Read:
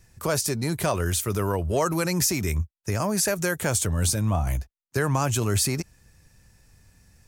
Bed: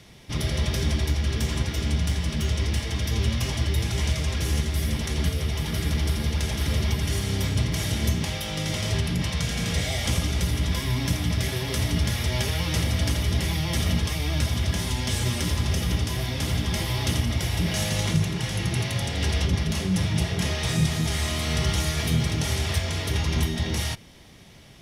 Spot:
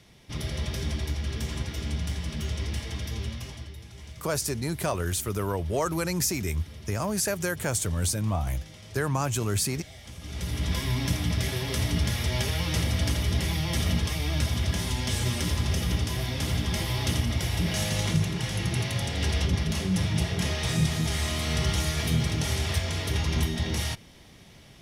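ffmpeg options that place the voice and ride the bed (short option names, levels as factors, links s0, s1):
-filter_complex "[0:a]adelay=4000,volume=0.668[s0];[1:a]volume=3.76,afade=t=out:st=2.93:d=0.84:silence=0.211349,afade=t=in:st=10.18:d=0.56:silence=0.133352[s1];[s0][s1]amix=inputs=2:normalize=0"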